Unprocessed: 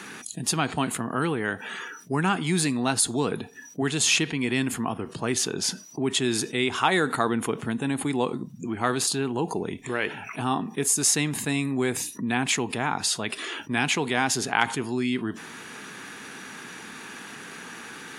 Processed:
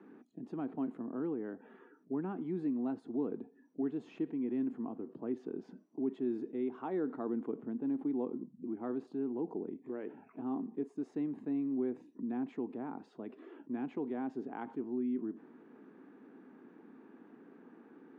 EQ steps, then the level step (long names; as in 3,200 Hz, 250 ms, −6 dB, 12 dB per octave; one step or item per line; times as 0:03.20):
four-pole ladder band-pass 330 Hz, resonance 45%
0.0 dB